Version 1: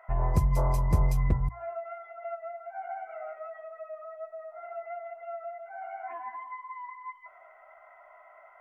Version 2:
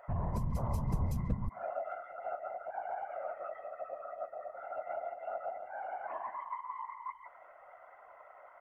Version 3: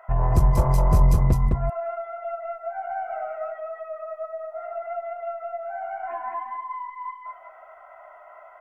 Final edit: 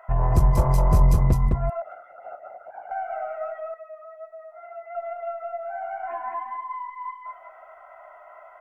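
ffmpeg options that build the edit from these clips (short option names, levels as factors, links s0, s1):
-filter_complex "[2:a]asplit=3[s0][s1][s2];[s0]atrim=end=1.822[s3];[1:a]atrim=start=1.818:end=2.912[s4];[s1]atrim=start=2.908:end=3.742[s5];[0:a]atrim=start=3.738:end=4.952[s6];[s2]atrim=start=4.948[s7];[s3][s4]acrossfade=d=0.004:c1=hsin:c2=hsin[s8];[s8][s5]acrossfade=d=0.004:c1=hsin:c2=hsin[s9];[s9][s6]acrossfade=d=0.004:c1=hsin:c2=hsin[s10];[s10][s7]acrossfade=d=0.004:c1=hsin:c2=hsin"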